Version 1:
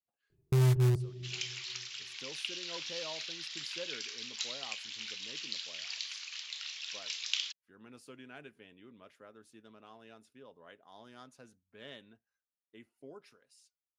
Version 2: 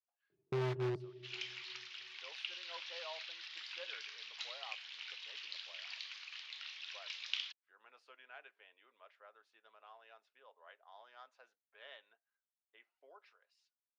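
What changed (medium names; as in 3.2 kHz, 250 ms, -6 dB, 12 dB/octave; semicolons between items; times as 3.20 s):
speech: add high-pass 640 Hz 24 dB/octave; first sound: add high-pass 300 Hz 12 dB/octave; master: add distance through air 250 m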